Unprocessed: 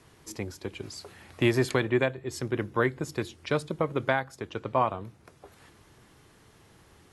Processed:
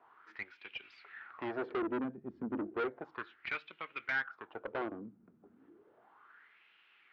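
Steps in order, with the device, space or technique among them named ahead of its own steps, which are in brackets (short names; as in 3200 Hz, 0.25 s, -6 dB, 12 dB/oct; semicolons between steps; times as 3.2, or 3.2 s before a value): wah-wah guitar rig (wah 0.33 Hz 210–2700 Hz, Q 4.5; tube stage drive 39 dB, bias 0.5; speaker cabinet 94–3600 Hz, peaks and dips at 96 Hz -4 dB, 140 Hz -8 dB, 550 Hz -4 dB, 1400 Hz +8 dB); gain +7.5 dB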